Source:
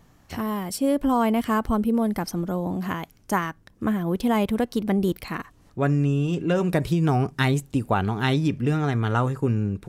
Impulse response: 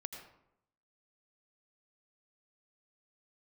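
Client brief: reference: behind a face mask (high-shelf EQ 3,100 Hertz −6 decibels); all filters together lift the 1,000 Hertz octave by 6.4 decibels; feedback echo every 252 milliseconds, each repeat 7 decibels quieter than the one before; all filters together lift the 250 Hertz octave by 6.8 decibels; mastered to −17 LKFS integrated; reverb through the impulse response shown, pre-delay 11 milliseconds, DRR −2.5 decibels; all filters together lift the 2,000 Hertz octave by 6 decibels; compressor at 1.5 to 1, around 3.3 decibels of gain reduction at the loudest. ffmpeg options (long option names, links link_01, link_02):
-filter_complex "[0:a]equalizer=frequency=250:width_type=o:gain=8,equalizer=frequency=1000:width_type=o:gain=6.5,equalizer=frequency=2000:width_type=o:gain=7,acompressor=threshold=-20dB:ratio=1.5,aecho=1:1:252|504|756|1008|1260:0.447|0.201|0.0905|0.0407|0.0183,asplit=2[link_01][link_02];[1:a]atrim=start_sample=2205,adelay=11[link_03];[link_02][link_03]afir=irnorm=-1:irlink=0,volume=5dB[link_04];[link_01][link_04]amix=inputs=2:normalize=0,highshelf=frequency=3100:gain=-6,volume=-0.5dB"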